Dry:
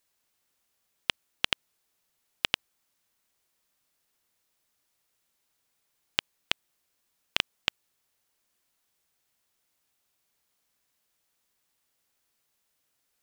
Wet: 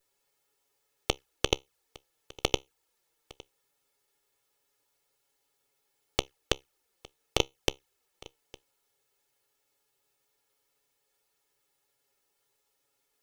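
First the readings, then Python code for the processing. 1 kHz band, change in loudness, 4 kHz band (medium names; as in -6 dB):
+3.5 dB, -0.5 dB, -2.0 dB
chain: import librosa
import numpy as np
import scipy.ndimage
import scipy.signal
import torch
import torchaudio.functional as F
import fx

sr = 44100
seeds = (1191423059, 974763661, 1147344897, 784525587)

p1 = fx.lower_of_two(x, sr, delay_ms=2.3)
p2 = fx.peak_eq(p1, sr, hz=490.0, db=6.5, octaves=1.5)
p3 = fx.comb_fb(p2, sr, f0_hz=67.0, decay_s=0.19, harmonics='all', damping=0.0, mix_pct=30)
p4 = fx.env_flanger(p3, sr, rest_ms=7.4, full_db=-36.5)
p5 = p4 + fx.echo_single(p4, sr, ms=859, db=-22.5, dry=0)
y = p5 * librosa.db_to_amplitude(5.5)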